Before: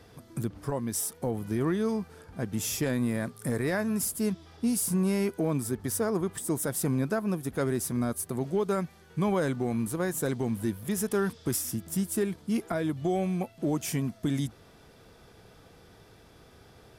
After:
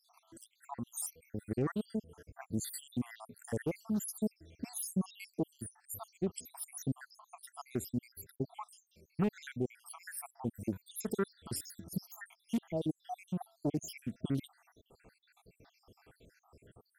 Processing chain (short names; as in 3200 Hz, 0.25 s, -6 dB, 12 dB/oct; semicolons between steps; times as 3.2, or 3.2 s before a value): random spectral dropouts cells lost 80%; Doppler distortion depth 0.32 ms; gain -3 dB